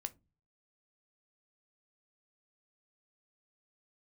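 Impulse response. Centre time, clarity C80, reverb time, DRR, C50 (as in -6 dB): 3 ms, 31.0 dB, 0.25 s, 10.5 dB, 22.5 dB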